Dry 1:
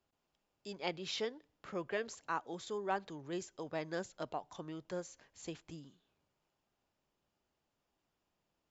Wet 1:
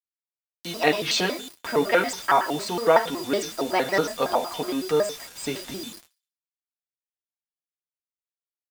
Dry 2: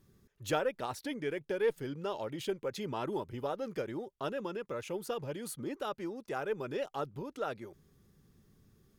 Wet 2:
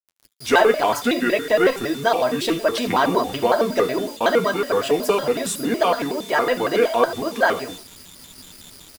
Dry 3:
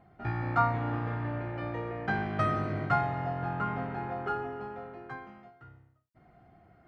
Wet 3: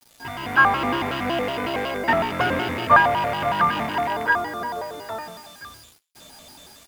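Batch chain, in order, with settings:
loose part that buzzes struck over −37 dBFS, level −31 dBFS
high-shelf EQ 2,100 Hz −7.5 dB
automatic gain control gain up to 11 dB
reverb whose tail is shaped and stops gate 130 ms flat, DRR 9 dB
steady tone 4,200 Hz −53 dBFS
low-shelf EQ 470 Hz −10.5 dB
mains-hum notches 50/100/150/200/250/300 Hz
comb filter 3.6 ms, depth 50%
bit-depth reduction 8 bits, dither none
flanger 0.61 Hz, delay 9.4 ms, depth 1.5 ms, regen −36%
feedback echo with a high-pass in the loop 66 ms, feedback 41%, high-pass 1,200 Hz, level −20.5 dB
pitch modulation by a square or saw wave square 5.4 Hz, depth 250 cents
normalise the peak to −3 dBFS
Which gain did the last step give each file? +14.0, +14.5, +7.0 decibels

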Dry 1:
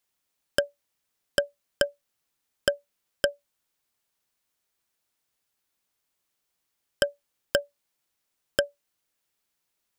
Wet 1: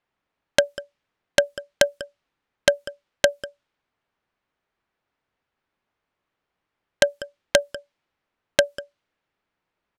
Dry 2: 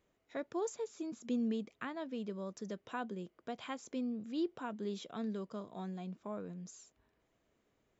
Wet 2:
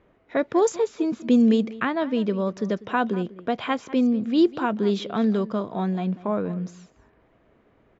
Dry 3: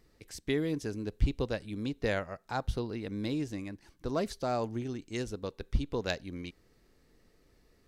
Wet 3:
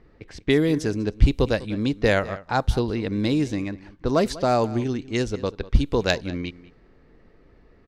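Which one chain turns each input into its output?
single-tap delay 196 ms −18 dB
wrap-around overflow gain 9 dB
low-pass that shuts in the quiet parts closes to 2,000 Hz, open at −27.5 dBFS
loudness normalisation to −24 LKFS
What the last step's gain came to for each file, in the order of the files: +7.5, +17.0, +11.0 decibels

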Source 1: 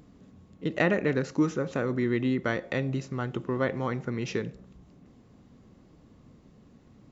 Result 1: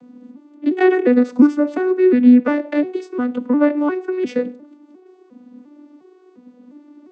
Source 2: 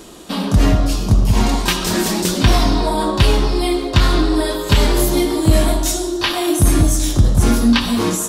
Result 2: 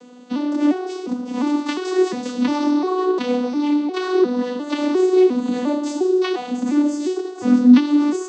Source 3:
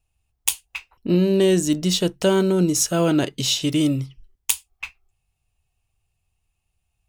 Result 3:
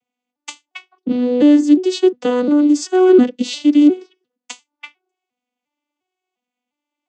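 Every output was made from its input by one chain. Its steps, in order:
vocoder with an arpeggio as carrier minor triad, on B3, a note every 353 ms
normalise the peak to −2 dBFS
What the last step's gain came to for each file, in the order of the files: +13.5, +0.5, +7.0 decibels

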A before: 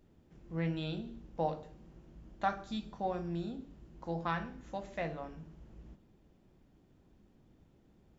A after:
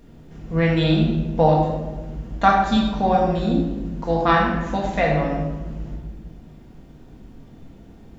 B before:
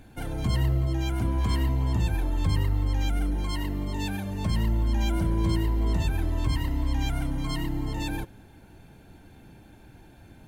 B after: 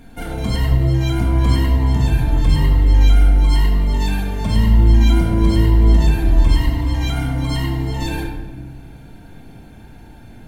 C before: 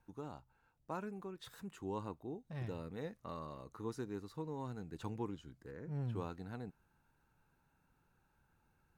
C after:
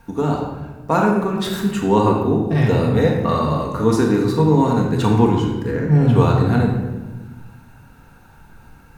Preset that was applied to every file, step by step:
rectangular room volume 750 cubic metres, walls mixed, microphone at 1.7 metres
normalise the peak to −2 dBFS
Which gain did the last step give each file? +15.0, +4.5, +23.5 decibels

